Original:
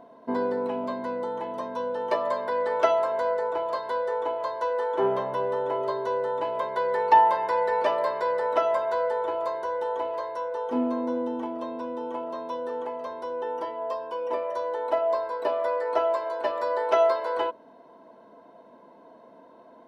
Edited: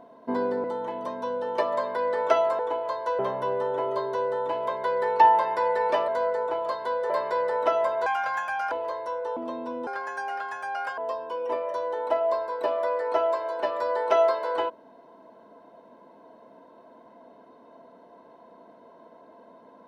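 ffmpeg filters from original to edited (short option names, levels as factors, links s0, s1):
-filter_complex "[0:a]asplit=11[s0][s1][s2][s3][s4][s5][s6][s7][s8][s9][s10];[s0]atrim=end=0.642[s11];[s1]atrim=start=1.168:end=3.122[s12];[s2]atrim=start=4.138:end=4.742[s13];[s3]atrim=start=5.108:end=8.002[s14];[s4]atrim=start=3.118:end=4.142[s15];[s5]atrim=start=7.998:end=8.964[s16];[s6]atrim=start=8.96:end=10.01,asetpts=PTS-STARTPTS,asetrate=70560,aresample=44100[s17];[s7]atrim=start=10.006:end=10.662[s18];[s8]atrim=start=11.498:end=12.004[s19];[s9]atrim=start=12:end=13.79,asetpts=PTS-STARTPTS,asetrate=71001,aresample=44100,atrim=end_sample=49030,asetpts=PTS-STARTPTS[s20];[s10]atrim=start=13.786[s21];[s11][s12]acrossfade=d=0.004:c1=hsin:c2=hsin[s22];[s22][s13]acrossfade=d=0.004:c1=hsin:c2=hsin[s23];[s23][s14]acrossfade=d=0.004:c1=hsin:c2=hsin[s24];[s24][s15]acrossfade=d=0.004:c1=hsin:c2=hsin[s25];[s25][s16]acrossfade=d=0.004:c1=hsin:c2=hsin[s26];[s26][s17]acrossfade=d=0.004:c1=hsin:c2=hsin[s27];[s27][s18]acrossfade=d=0.004:c1=hsin:c2=hsin[s28];[s28][s19]acrossfade=d=0.004:c1=hsin:c2=hsin[s29];[s29][s20]acrossfade=d=0.004:c1=hsin:c2=hsin[s30];[s30][s21]acrossfade=d=0.004:c1=hsin:c2=hsin"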